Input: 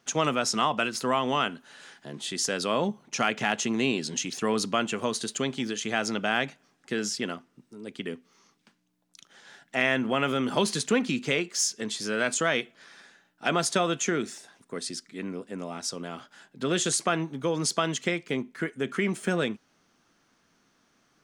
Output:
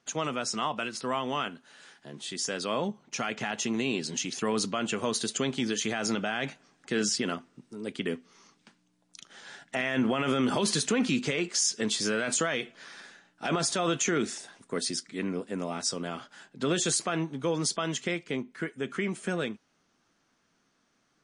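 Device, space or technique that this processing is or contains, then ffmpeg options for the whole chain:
low-bitrate web radio: -af "dynaudnorm=f=320:g=31:m=13dB,alimiter=limit=-13dB:level=0:latency=1:release=29,volume=-4.5dB" -ar 24000 -c:a libmp3lame -b:a 40k

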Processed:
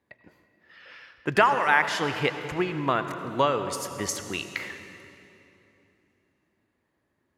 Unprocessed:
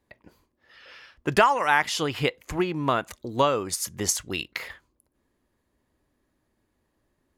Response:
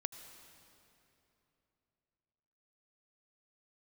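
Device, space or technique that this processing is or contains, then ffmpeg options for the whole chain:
swimming-pool hall: -filter_complex "[1:a]atrim=start_sample=2205[a];[0:a][a]afir=irnorm=-1:irlink=0,highpass=89,equalizer=f=1.9k:w=1.4:g=4.5,highshelf=f=4.5k:g=-7"

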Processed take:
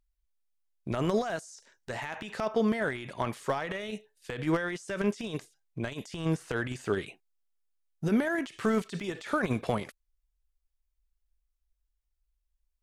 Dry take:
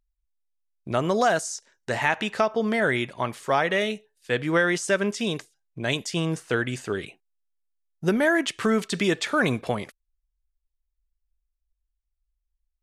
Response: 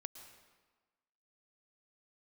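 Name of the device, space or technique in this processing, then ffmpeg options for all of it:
de-esser from a sidechain: -filter_complex "[0:a]asplit=2[a][b];[b]highpass=4.1k,apad=whole_len=565590[c];[a][c]sidechaincompress=threshold=-45dB:ratio=16:attack=0.57:release=26"

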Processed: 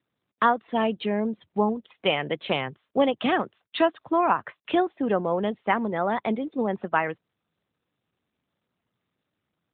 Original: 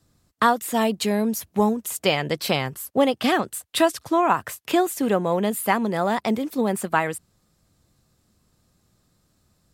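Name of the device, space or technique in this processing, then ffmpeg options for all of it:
mobile call with aggressive noise cancelling: -filter_complex "[0:a]asplit=3[a][b][c];[a]afade=t=out:st=1.82:d=0.02[d];[b]highpass=f=90:p=1,afade=t=in:st=1.82:d=0.02,afade=t=out:st=2.66:d=0.02[e];[c]afade=t=in:st=2.66:d=0.02[f];[d][e][f]amix=inputs=3:normalize=0,highpass=f=180:p=1,afftdn=nr=12:nf=-40,volume=-1.5dB" -ar 8000 -c:a libopencore_amrnb -b:a 12200

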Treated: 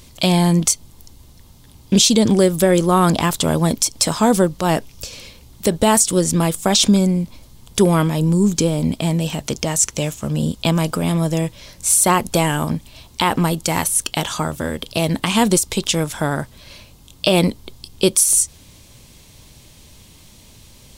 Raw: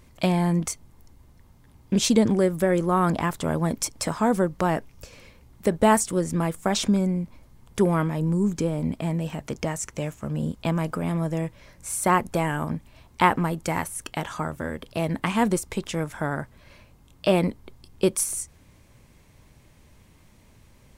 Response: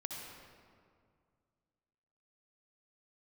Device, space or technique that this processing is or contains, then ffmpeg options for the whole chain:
over-bright horn tweeter: -af "highshelf=f=2.6k:t=q:w=1.5:g=8.5,alimiter=limit=-11dB:level=0:latency=1:release=103,volume=7.5dB"

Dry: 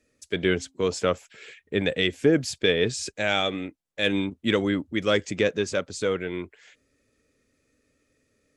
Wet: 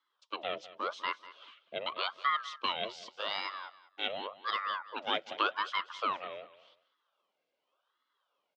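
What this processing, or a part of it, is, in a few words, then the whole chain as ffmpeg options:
voice changer toy: -filter_complex "[0:a]aeval=exprs='val(0)*sin(2*PI*900*n/s+900*0.75/0.87*sin(2*PI*0.87*n/s))':c=same,highpass=460,equalizer=f=550:t=q:w=4:g=5,equalizer=f=790:t=q:w=4:g=-5,equalizer=f=1.2k:t=q:w=4:g=4,equalizer=f=1.8k:t=q:w=4:g=-8,equalizer=f=3.2k:t=q:w=4:g=6,lowpass=f=4.6k:w=0.5412,lowpass=f=4.6k:w=1.3066,asettb=1/sr,asplit=3[a][b][c];[a]atrim=end=5.074[d];[b]atrim=start=5.07:end=6.34,asetpts=PTS-STARTPTS,afade=t=in:d=0.004:c=qsin,afade=t=out:st=1.266:d=0.004:c=qsin,equalizer=f=1.7k:t=o:w=2.4:g=5[e];[c]atrim=start=6.336[f];[d][e]acrossfade=d=0.004:c1=hsin:c2=qsin[g];[g][f]acrossfade=d=0.004:c1=qsin:c2=hsin,aecho=1:1:195|390:0.141|0.0339,volume=-8dB"

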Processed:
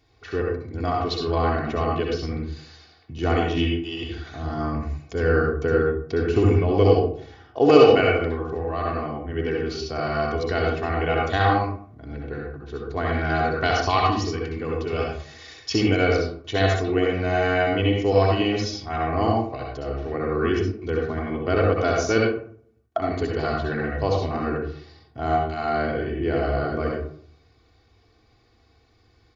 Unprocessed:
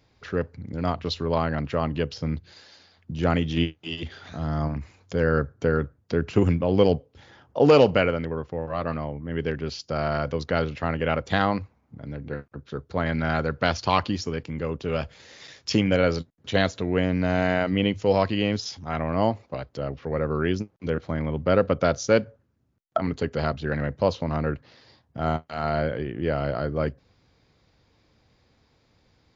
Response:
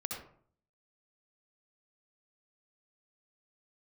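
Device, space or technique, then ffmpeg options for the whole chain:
microphone above a desk: -filter_complex "[0:a]aecho=1:1:2.7:0.75[a];[1:a]atrim=start_sample=2205[b];[a][b]afir=irnorm=-1:irlink=0"

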